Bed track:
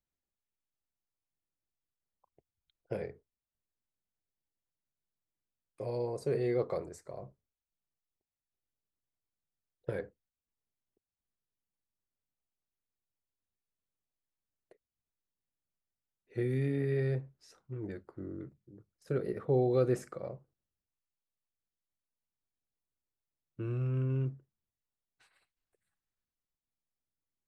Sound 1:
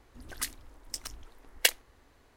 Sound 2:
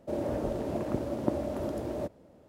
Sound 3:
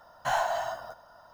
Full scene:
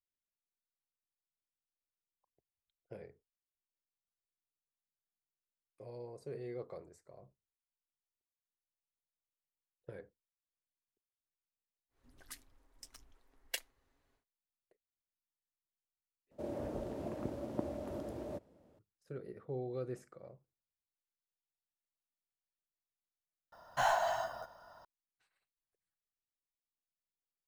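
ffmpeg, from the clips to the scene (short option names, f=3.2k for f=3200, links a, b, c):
-filter_complex "[0:a]volume=-12.5dB[a];[1:a]aecho=1:1:7.4:0.32[b];[a]asplit=3[c][d][e];[c]atrim=end=16.314[f];[2:a]atrim=end=2.48,asetpts=PTS-STARTPTS,volume=-9dB[g];[d]atrim=start=18.786:end=23.524[h];[3:a]atrim=end=1.33,asetpts=PTS-STARTPTS,volume=-3.5dB[i];[e]atrim=start=24.846[j];[b]atrim=end=2.36,asetpts=PTS-STARTPTS,volume=-16.5dB,afade=t=in:d=0.1,afade=t=out:st=2.26:d=0.1,adelay=11890[k];[f][g]acrossfade=d=0.004:c1=hsin:c2=hsin[l];[l][h]acrossfade=d=0.004:c1=hsin:c2=hsin[m];[m][i]acrossfade=d=0.004:c1=hsin:c2=hsin[n];[n][j]acrossfade=d=0.004:c1=hsin:c2=hsin[o];[o][k]amix=inputs=2:normalize=0"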